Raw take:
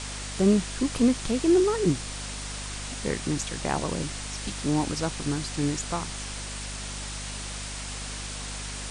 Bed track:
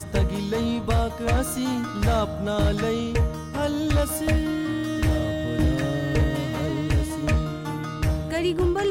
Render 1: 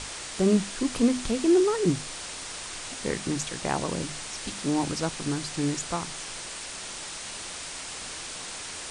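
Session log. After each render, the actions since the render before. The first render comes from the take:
mains-hum notches 50/100/150/200/250 Hz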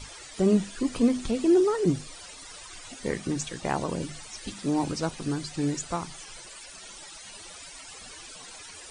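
broadband denoise 15 dB, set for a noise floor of −38 dBFS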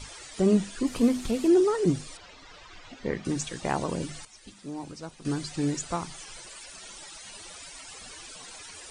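0:00.87–0:01.48: variable-slope delta modulation 64 kbit/s
0:02.17–0:03.25: high-frequency loss of the air 180 metres
0:04.25–0:05.25: clip gain −11 dB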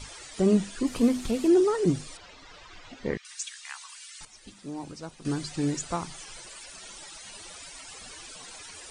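0:03.17–0:04.21: Bessel high-pass filter 2,100 Hz, order 8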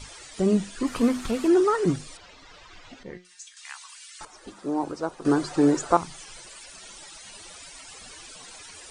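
0:00.80–0:01.96: parametric band 1,300 Hz +9.5 dB 1.3 octaves
0:03.03–0:03.57: tuned comb filter 180 Hz, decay 0.27 s, mix 80%
0:04.19–0:05.97: flat-topped bell 680 Hz +12.5 dB 2.7 octaves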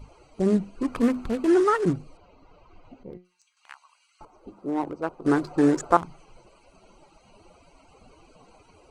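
adaptive Wiener filter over 25 samples
dynamic equaliser 1,700 Hz, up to +6 dB, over −45 dBFS, Q 1.6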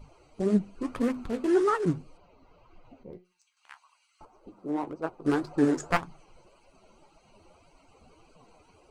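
wavefolder on the positive side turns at −12.5 dBFS
flanger 1.8 Hz, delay 4.6 ms, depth 9.4 ms, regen +54%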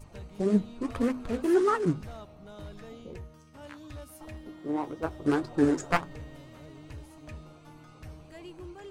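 mix in bed track −22 dB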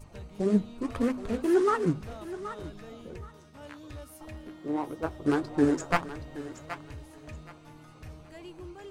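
feedback echo with a high-pass in the loop 774 ms, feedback 24%, high-pass 510 Hz, level −11 dB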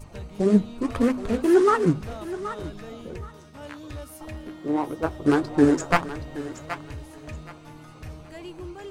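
level +6 dB
brickwall limiter −3 dBFS, peak gain reduction 1 dB

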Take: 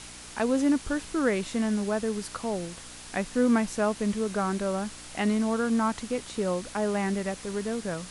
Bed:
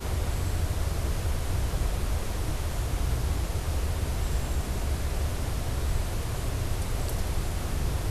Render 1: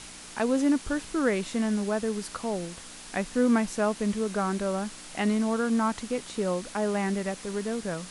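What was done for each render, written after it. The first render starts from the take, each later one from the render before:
hum removal 60 Hz, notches 2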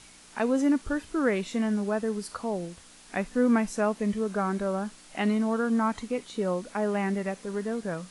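noise reduction from a noise print 8 dB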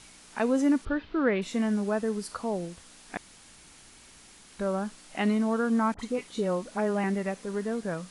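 0:00.85–0:01.42: Butterworth low-pass 4,200 Hz
0:03.17–0:04.59: fill with room tone
0:05.94–0:07.04: all-pass dispersion highs, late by 49 ms, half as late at 1,300 Hz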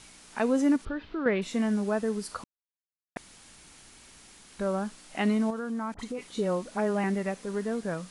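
0:00.76–0:01.26: downward compressor 2 to 1, threshold −32 dBFS
0:02.44–0:03.16: silence
0:05.50–0:06.30: downward compressor 3 to 1, threshold −32 dBFS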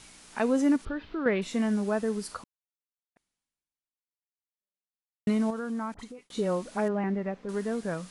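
0:02.31–0:05.27: fade out exponential
0:05.83–0:06.30: fade out
0:06.88–0:07.49: head-to-tape spacing loss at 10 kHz 30 dB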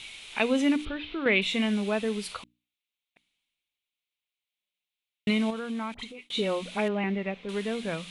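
flat-topped bell 2,900 Hz +15 dB 1.1 octaves
mains-hum notches 60/120/180/240/300 Hz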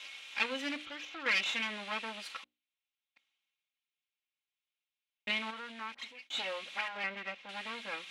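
lower of the sound and its delayed copy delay 3.7 ms
resonant band-pass 2,300 Hz, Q 0.93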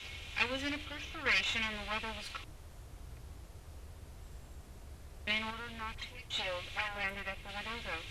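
mix in bed −22 dB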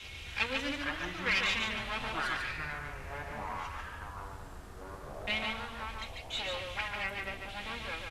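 delay with pitch and tempo change per echo 262 ms, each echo −7 semitones, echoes 3, each echo −6 dB
single-tap delay 145 ms −4.5 dB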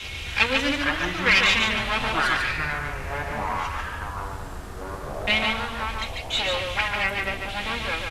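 level +11.5 dB

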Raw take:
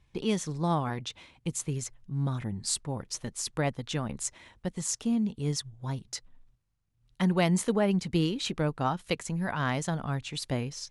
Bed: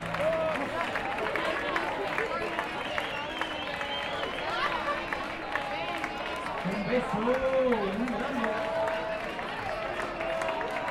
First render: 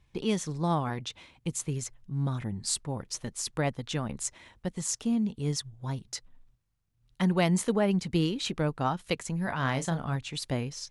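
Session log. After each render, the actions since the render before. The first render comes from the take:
0:09.43–0:10.16: double-tracking delay 30 ms −10 dB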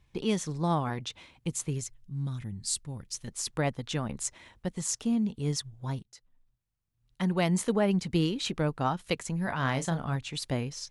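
0:01.81–0:03.28: parametric band 700 Hz −13 dB 3 octaves
0:06.03–0:07.79: fade in linear, from −19 dB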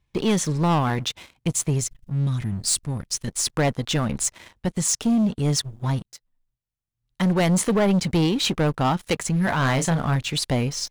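leveller curve on the samples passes 3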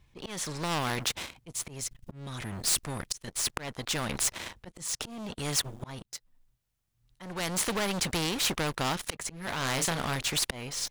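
volume swells 546 ms
every bin compressed towards the loudest bin 2 to 1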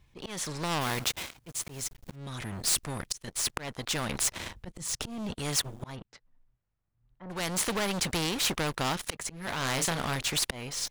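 0:00.81–0:02.16: one scale factor per block 3 bits
0:04.35–0:05.34: low-shelf EQ 210 Hz +8 dB
0:05.95–0:07.29: low-pass filter 2,500 Hz → 1,300 Hz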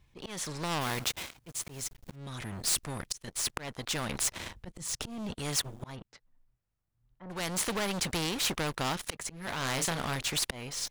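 level −2 dB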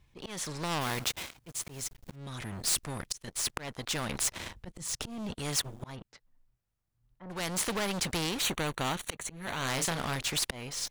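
0:08.42–0:09.68: Butterworth band-reject 5,100 Hz, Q 5.1

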